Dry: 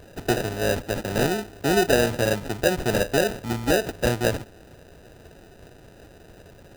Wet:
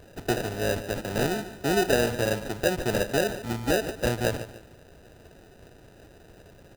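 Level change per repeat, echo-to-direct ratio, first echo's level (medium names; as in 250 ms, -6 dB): -9.0 dB, -13.0 dB, -13.5 dB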